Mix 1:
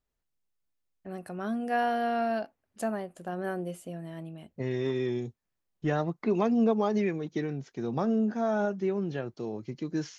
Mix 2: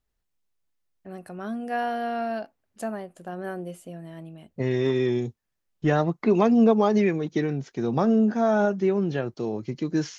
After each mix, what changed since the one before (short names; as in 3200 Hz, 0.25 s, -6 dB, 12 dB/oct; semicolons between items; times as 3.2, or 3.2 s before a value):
second voice +6.5 dB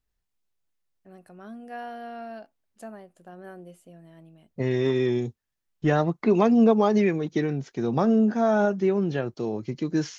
first voice -9.5 dB